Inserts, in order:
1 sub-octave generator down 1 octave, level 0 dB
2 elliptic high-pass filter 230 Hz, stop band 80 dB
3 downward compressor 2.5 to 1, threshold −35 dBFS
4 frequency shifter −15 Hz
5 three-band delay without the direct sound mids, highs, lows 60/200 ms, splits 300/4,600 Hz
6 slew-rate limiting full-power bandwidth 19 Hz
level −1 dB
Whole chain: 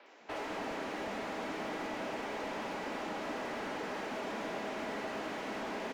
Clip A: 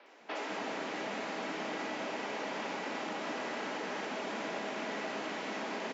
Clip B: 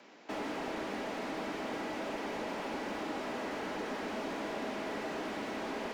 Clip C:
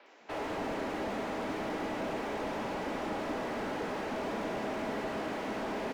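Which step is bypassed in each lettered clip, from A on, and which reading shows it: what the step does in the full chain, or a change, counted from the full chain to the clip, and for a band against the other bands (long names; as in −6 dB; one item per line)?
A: 6, distortion level −9 dB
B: 5, 250 Hz band +2.0 dB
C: 3, average gain reduction 4.5 dB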